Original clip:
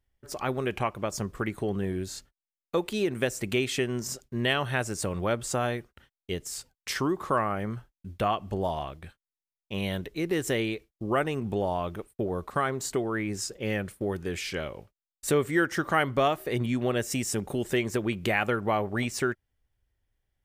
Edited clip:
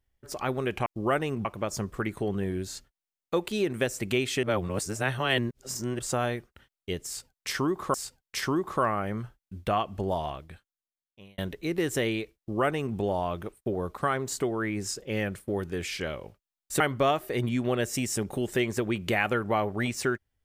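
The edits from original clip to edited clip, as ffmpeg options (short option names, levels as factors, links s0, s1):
-filter_complex "[0:a]asplit=8[s0][s1][s2][s3][s4][s5][s6][s7];[s0]atrim=end=0.862[s8];[s1]atrim=start=10.908:end=11.502[s9];[s2]atrim=start=0.858:end=3.842[s10];[s3]atrim=start=3.838:end=5.402,asetpts=PTS-STARTPTS,areverse[s11];[s4]atrim=start=5.398:end=7.352[s12];[s5]atrim=start=6.468:end=9.91,asetpts=PTS-STARTPTS,afade=t=out:st=2.322:d=1.12[s13];[s6]atrim=start=9.91:end=15.332,asetpts=PTS-STARTPTS,afade=t=in:d=0.004:c=hsin[s14];[s7]atrim=start=15.968[s15];[s8][s9]acrossfade=d=0.004:c1=hsin:c2=hsin[s16];[s16][s10]acrossfade=d=0.004:c1=hsin:c2=hsin[s17];[s17][s11]acrossfade=d=0.004:c1=hsin:c2=hsin[s18];[s18][s12]acrossfade=d=0.004:c1=hsin:c2=hsin[s19];[s13][s14]concat=n=2:v=0:a=1[s20];[s19][s20]acrossfade=d=0.004:c1=hsin:c2=hsin[s21];[s21][s15]acrossfade=d=0.004:c1=hsin:c2=hsin"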